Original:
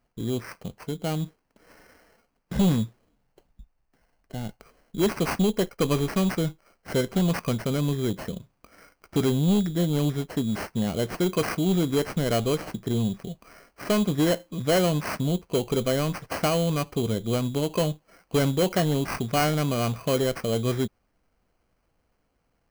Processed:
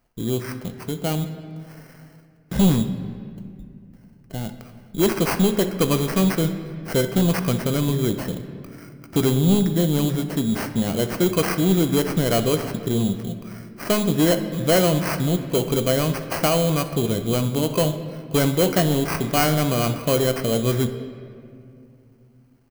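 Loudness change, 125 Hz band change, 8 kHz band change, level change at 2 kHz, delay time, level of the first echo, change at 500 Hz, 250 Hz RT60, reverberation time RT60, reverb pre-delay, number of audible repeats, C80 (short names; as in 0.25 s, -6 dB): +4.5 dB, +4.5 dB, +7.0 dB, +4.5 dB, 63 ms, -18.5 dB, +4.0 dB, 3.7 s, 2.5 s, 3 ms, 1, 11.5 dB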